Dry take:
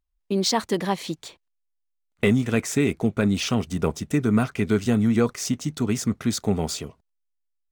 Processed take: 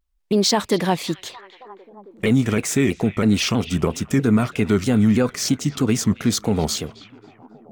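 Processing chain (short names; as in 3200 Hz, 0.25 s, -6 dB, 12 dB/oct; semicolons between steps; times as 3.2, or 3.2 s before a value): limiter -13.5 dBFS, peak gain reduction 7.5 dB; delay with a stepping band-pass 0.269 s, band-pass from 2800 Hz, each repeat -0.7 oct, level -12 dB; shaped vibrato saw down 3.1 Hz, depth 160 cents; gain +5.5 dB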